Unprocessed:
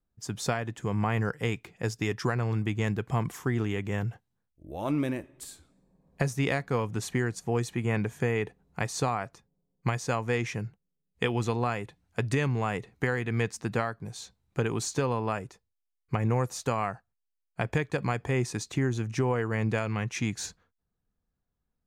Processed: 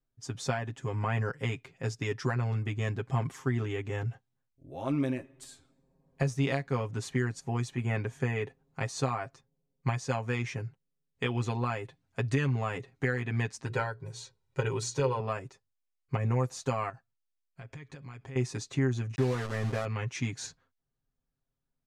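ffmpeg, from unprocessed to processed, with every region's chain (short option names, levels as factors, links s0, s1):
-filter_complex "[0:a]asettb=1/sr,asplit=3[s0][s1][s2];[s0]atrim=end=13.654[s3];[s1]atrim=start=13.65:end=15.2,asetpts=PTS-STARTPTS,afade=t=in:d=0.004:c=qsin,afade=t=out:st=1.546:d=0.004:c=qsin,bandreject=f=60:t=h:w=6,bandreject=f=120:t=h:w=6,bandreject=f=180:t=h:w=6,bandreject=f=240:t=h:w=6,bandreject=f=300:t=h:w=6,bandreject=f=360:t=h:w=6,bandreject=f=420:t=h:w=6,bandreject=f=480:t=h:w=6,aecho=1:1:2.1:0.6,atrim=end_sample=68355[s4];[s2]atrim=start=15.196[s5];[s3][s4]acrossfade=d=0.004:c1=hsin:c2=qsin[s6];[s6][s5]acrossfade=d=0.004:c1=qsin:c2=hsin,asettb=1/sr,asplit=3[s7][s8][s9];[s7]atrim=end=16.894[s10];[s8]atrim=start=16.89:end=18.36,asetpts=PTS-STARTPTS,afade=t=in:d=0.004:c=qsin,afade=t=out:st=1.466:d=0.004:c=qsin,lowpass=8800,equalizer=f=670:t=o:w=2.1:g=-4.5,acompressor=threshold=0.01:ratio=6:attack=3.2:release=140:knee=1:detection=peak[s11];[s9]atrim=start=18.356[s12];[s10][s11]acrossfade=d=0.004:c1=hsin:c2=qsin[s13];[s13][s12]acrossfade=d=0.004:c1=qsin:c2=hsin,asettb=1/sr,asplit=3[s14][s15][s16];[s14]atrim=end=19.154[s17];[s15]atrim=start=19.15:end=19.85,asetpts=PTS-STARTPTS,afade=t=in:d=0.004:c=qsin,afade=t=out:st=0.696:d=0.004:c=qsin,lowpass=1900,aeval=exprs='val(0)*gte(abs(val(0)),0.0266)':c=same[s18];[s16]atrim=start=19.846[s19];[s17][s18]acrossfade=d=0.004:c1=hsin:c2=qsin[s20];[s20][s19]acrossfade=d=0.004:c1=qsin:c2=hsin,lowpass=8200,aecho=1:1:7.5:0.9,volume=0.531"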